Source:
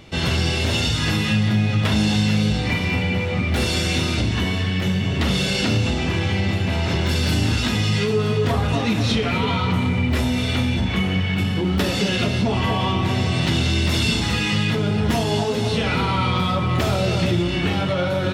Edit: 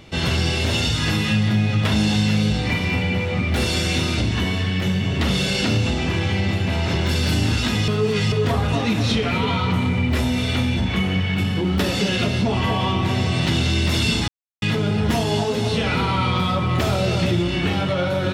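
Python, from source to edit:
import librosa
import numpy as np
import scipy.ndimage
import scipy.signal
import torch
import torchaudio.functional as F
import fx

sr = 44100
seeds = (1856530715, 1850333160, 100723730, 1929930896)

y = fx.edit(x, sr, fx.reverse_span(start_s=7.88, length_s=0.44),
    fx.silence(start_s=14.28, length_s=0.34), tone=tone)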